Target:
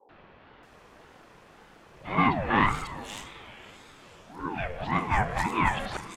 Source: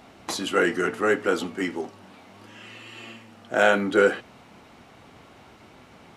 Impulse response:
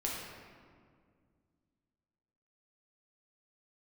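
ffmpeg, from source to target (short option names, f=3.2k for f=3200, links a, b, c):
-filter_complex "[0:a]areverse,aeval=exprs='clip(val(0),-1,0.224)':c=same,acrossover=split=260|3500[a][b][c];[b]adelay=90[d];[c]adelay=630[e];[a][d][e]amix=inputs=3:normalize=0,asplit=2[f][g];[1:a]atrim=start_sample=2205,adelay=35[h];[g][h]afir=irnorm=-1:irlink=0,volume=-13dB[i];[f][i]amix=inputs=2:normalize=0,aeval=exprs='val(0)*sin(2*PI*470*n/s+470*0.45/1.8*sin(2*PI*1.8*n/s))':c=same"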